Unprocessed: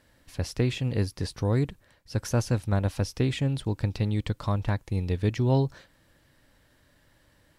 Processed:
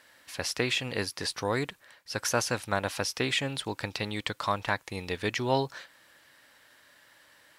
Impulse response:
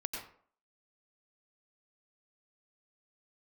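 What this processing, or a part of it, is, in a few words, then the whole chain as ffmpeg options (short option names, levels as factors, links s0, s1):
filter by subtraction: -filter_complex "[0:a]asplit=2[s0][s1];[s1]lowpass=1500,volume=-1[s2];[s0][s2]amix=inputs=2:normalize=0,volume=2.11"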